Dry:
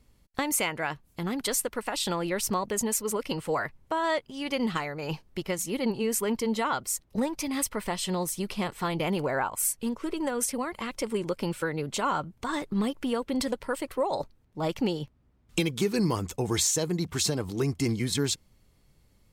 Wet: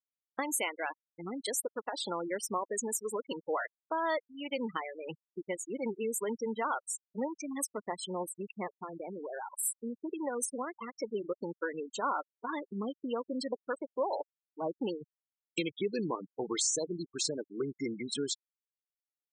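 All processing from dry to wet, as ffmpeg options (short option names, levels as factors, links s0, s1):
-filter_complex "[0:a]asettb=1/sr,asplit=3[s0][s1][s2];[s0]atrim=end=8.754[s3];[s1]atrim=start=8.75:end=9.56,asetpts=PTS-STARTPTS,afade=t=in:d=0.004:c=qsin,afade=t=out:st=0.806:d=0.004:c=qsin,lowshelf=f=120:g=2.5,acompressor=threshold=0.0316:ratio=5:attack=3.2:release=140:knee=1:detection=peak[s4];[s2]atrim=start=9.556[s5];[s3][s4]acrossfade=d=0.004:c1=hsin:c2=qsin[s6];[s6][s5]acrossfade=d=0.004:c1=qsin:c2=hsin,highpass=280,afftfilt=real='re*gte(hypot(re,im),0.0562)':imag='im*gte(hypot(re,im),0.0562)':win_size=1024:overlap=0.75,volume=0.631"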